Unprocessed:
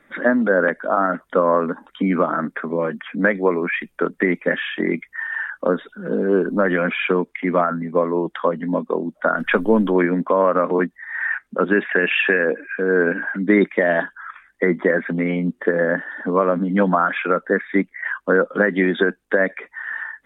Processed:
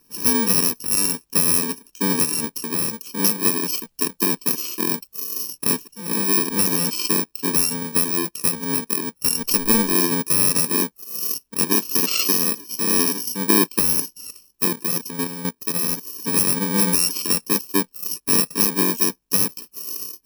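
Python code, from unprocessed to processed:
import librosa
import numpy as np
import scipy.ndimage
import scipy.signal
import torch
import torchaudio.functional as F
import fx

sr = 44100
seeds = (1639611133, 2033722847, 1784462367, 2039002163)

y = fx.bit_reversed(x, sr, seeds[0], block=64)
y = fx.level_steps(y, sr, step_db=10, at=(14.68, 16.04))
y = F.gain(torch.from_numpy(y), -1.5).numpy()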